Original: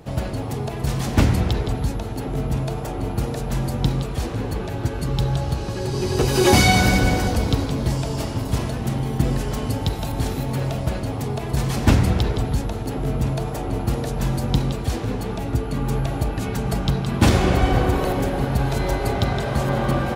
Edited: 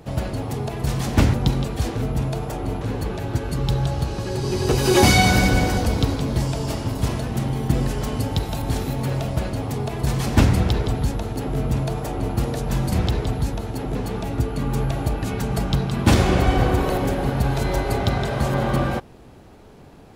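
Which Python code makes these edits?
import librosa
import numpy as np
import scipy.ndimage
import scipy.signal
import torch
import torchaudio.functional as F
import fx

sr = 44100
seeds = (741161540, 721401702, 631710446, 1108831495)

y = fx.edit(x, sr, fx.swap(start_s=1.34, length_s=1.03, other_s=14.42, other_length_s=0.68),
    fx.cut(start_s=3.16, length_s=1.15), tone=tone)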